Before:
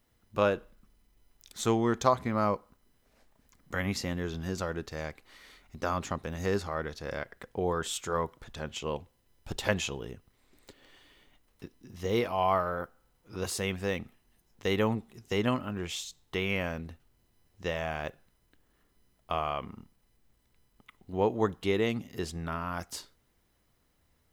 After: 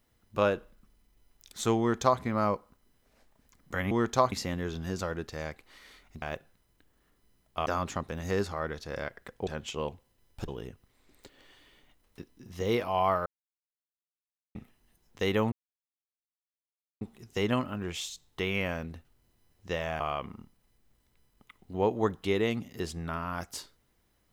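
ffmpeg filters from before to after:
-filter_complex "[0:a]asplit=11[a][b][c][d][e][f][g][h][i][j][k];[a]atrim=end=3.912[l];[b]atrim=start=1.788:end=2.202[m];[c]atrim=start=3.908:end=5.812[n];[d]atrim=start=17.948:end=19.392[o];[e]atrim=start=5.808:end=7.622[p];[f]atrim=start=8.548:end=9.562[q];[g]atrim=start=9.918:end=12.7,asetpts=PTS-STARTPTS,afade=t=out:st=2.778:d=0.004:c=hsin[r];[h]atrim=start=12.7:end=13.99,asetpts=PTS-STARTPTS,volume=0[s];[i]atrim=start=13.99:end=14.96,asetpts=PTS-STARTPTS,afade=t=in:d=0.004:c=hsin,afade=t=out:st=0.966:d=0.004:c=hsin,apad=pad_dur=1.49[t];[j]atrim=start=14.96:end=17.952,asetpts=PTS-STARTPTS,afade=t=in:d=0.004:c=hsin[u];[k]atrim=start=19.388[v];[l][m]acrossfade=d=0.004:c1=hsin:c2=hsin[w];[w][n]acrossfade=d=0.004:c1=hsin:c2=hsin[x];[x][o]acrossfade=d=0.004:c1=hsin:c2=hsin[y];[y][p]acrossfade=d=0.004:c1=hsin:c2=hsin[z];[z][q]acrossfade=d=0.004:c1=hsin:c2=hsin[aa];[r][s][t][u]concat=n=4:v=0:a=1[ab];[aa][ab]acrossfade=d=0.004:c1=hsin:c2=hsin[ac];[ac][v]acrossfade=d=0.004:c1=hsin:c2=hsin"

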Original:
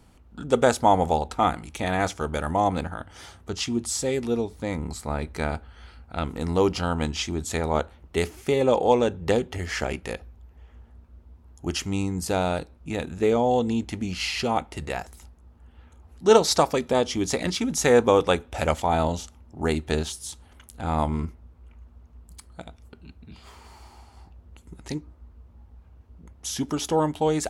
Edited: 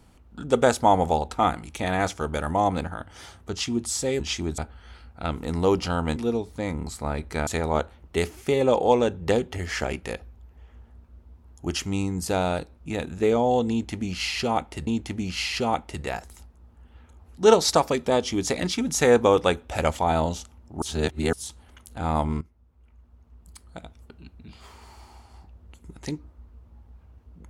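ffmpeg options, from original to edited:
-filter_complex "[0:a]asplit=9[a][b][c][d][e][f][g][h][i];[a]atrim=end=4.202[j];[b]atrim=start=7.088:end=7.472[k];[c]atrim=start=5.508:end=7.092[l];[d]atrim=start=4.198:end=5.512[m];[e]atrim=start=7.468:end=14.872[n];[f]atrim=start=13.698:end=19.652[o];[g]atrim=start=19.648:end=20.162,asetpts=PTS-STARTPTS,areverse[p];[h]atrim=start=20.158:end=21.24,asetpts=PTS-STARTPTS,afade=t=out:st=1.078:d=0.004:c=hsin:silence=0.141254[q];[i]atrim=start=21.24,asetpts=PTS-STARTPTS,afade=t=in:d=1.4:silence=0.141254[r];[j][k]acrossfade=d=0.004:c1=hsin:c2=hsin[s];[s][l]acrossfade=d=0.004:c1=hsin:c2=hsin[t];[t][m]acrossfade=d=0.004:c1=hsin:c2=hsin[u];[u][n]acrossfade=d=0.004:c1=hsin:c2=hsin[v];[v][o]acrossfade=d=0.004:c1=hsin:c2=hsin[w];[w][p]acrossfade=d=0.004:c1=hsin:c2=hsin[x];[q][r]concat=n=2:v=0:a=1[y];[x][y]acrossfade=d=0.004:c1=hsin:c2=hsin"

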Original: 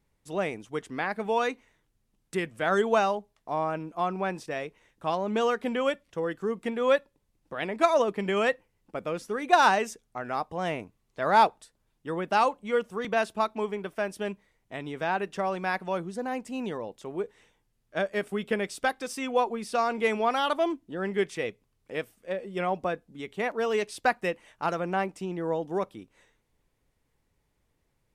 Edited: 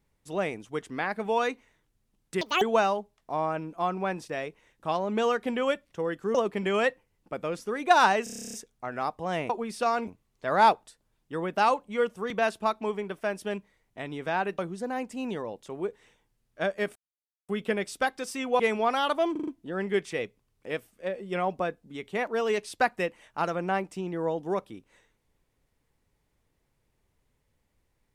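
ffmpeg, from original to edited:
-filter_complex "[0:a]asplit=23[a][b][c][d][e][f][g][h][i][j][k][l][m][n][o][p][q][r][s][t][u][v][w];[a]atrim=end=2.414[x];[b]atrim=start=2.41:end=2.8,asetpts=PTS-STARTPTS,asetrate=83790,aresample=44100,atrim=end_sample=9052,asetpts=PTS-STARTPTS[y];[c]atrim=start=2.796:end=6.532[z];[d]atrim=start=7.968:end=9.892[aa];[e]atrim=start=9.858:end=9.892[ab];[f]atrim=start=9.858:end=9.892[ac];[g]atrim=start=9.858:end=9.892[ad];[h]atrim=start=9.858:end=9.892[ae];[i]atrim=start=9.858:end=9.892[af];[j]atrim=start=9.858:end=9.892[ag];[k]atrim=start=9.858:end=9.892[ah];[l]atrim=start=9.858:end=9.892[ai];[m]atrim=start=9.858:end=9.892[aj];[n]atrim=start=9.858:end=10.822[ak];[o]atrim=start=19.418:end=20.002[al];[p]atrim=start=10.818:end=15.332[am];[q]atrim=start=15.938:end=18.31,asetpts=PTS-STARTPTS,afade=t=out:st=2.368:d=0.004:c=hsin,apad=pad_dur=0.53[an];[r]atrim=start=18.31:end=19.422,asetpts=PTS-STARTPTS,afade=t=in:d=0.004:c=hsin[ao];[s]atrim=start=19.998:end=20.762[ap];[t]atrim=start=20.718:end=20.762[aq];[u]atrim=start=20.718:end=20.762[ar];[v]atrim=start=20.718:end=20.762[as];[w]atrim=start=20.718[at];[x][y]acrossfade=d=0.004:c1=hsin:c2=hsin[au];[au][z]acrossfade=d=0.004:c1=hsin:c2=hsin[av];[av][aa]acrossfade=d=0.004:c1=hsin:c2=hsin[aw];[aw][ab]acrossfade=d=0.004:c1=hsin:c2=hsin[ax];[ax][ac]acrossfade=d=0.004:c1=hsin:c2=hsin[ay];[ay][ad]acrossfade=d=0.004:c1=hsin:c2=hsin[az];[az][ae]acrossfade=d=0.004:c1=hsin:c2=hsin[ba];[ba][af]acrossfade=d=0.004:c1=hsin:c2=hsin[bb];[bb][ag]acrossfade=d=0.004:c1=hsin:c2=hsin[bc];[bc][ah]acrossfade=d=0.004:c1=hsin:c2=hsin[bd];[bd][ai]acrossfade=d=0.004:c1=hsin:c2=hsin[be];[be][aj]acrossfade=d=0.004:c1=hsin:c2=hsin[bf];[bf][ak]acrossfade=d=0.004:c1=hsin:c2=hsin[bg];[bg][al]acrossfade=d=0.004:c1=hsin:c2=hsin[bh];[bh][am]acrossfade=d=0.004:c1=hsin:c2=hsin[bi];[an][ao]concat=n=2:v=0:a=1[bj];[bi][bj]acrossfade=d=0.004:c1=hsin:c2=hsin[bk];[bk][ap]acrossfade=d=0.004:c1=hsin:c2=hsin[bl];[bl][aq]acrossfade=d=0.004:c1=hsin:c2=hsin[bm];[bm][ar]acrossfade=d=0.004:c1=hsin:c2=hsin[bn];[bn][as]acrossfade=d=0.004:c1=hsin:c2=hsin[bo];[bo][at]acrossfade=d=0.004:c1=hsin:c2=hsin"

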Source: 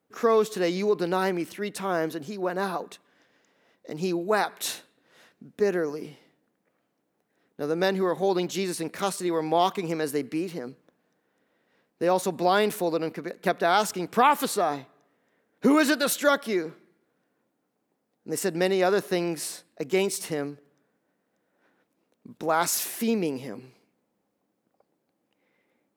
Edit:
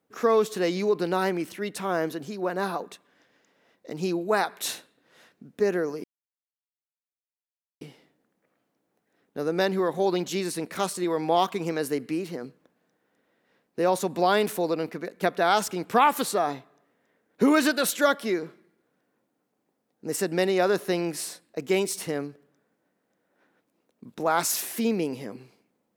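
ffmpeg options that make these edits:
-filter_complex "[0:a]asplit=2[a][b];[a]atrim=end=6.04,asetpts=PTS-STARTPTS,afade=t=out:st=6.036:d=0.004:c=hsin,apad=pad_dur=1.77[c];[b]atrim=start=6.04,asetpts=PTS-STARTPTS,afade=t=in:d=0.004:c=hsin[d];[c][d]concat=n=2:v=0:a=1"

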